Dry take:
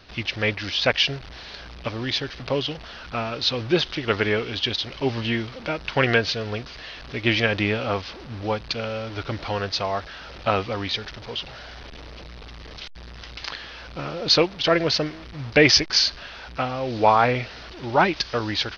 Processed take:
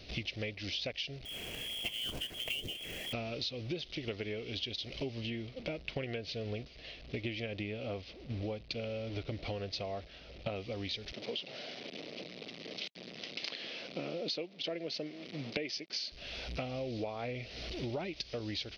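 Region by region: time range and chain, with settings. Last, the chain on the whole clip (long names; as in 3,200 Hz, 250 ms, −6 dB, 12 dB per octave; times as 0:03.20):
0:01.25–0:03.13: voice inversion scrambler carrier 3,300 Hz + log-companded quantiser 4 bits
0:05.30–0:10.56: low-pass filter 3,500 Hz 6 dB per octave + downward expander −35 dBFS
0:11.12–0:16.12: high-pass filter 180 Hz 24 dB per octave + high-frequency loss of the air 67 metres
whole clip: flat-topped bell 1,200 Hz −13.5 dB 1.3 octaves; downward compressor 16 to 1, threshold −35 dBFS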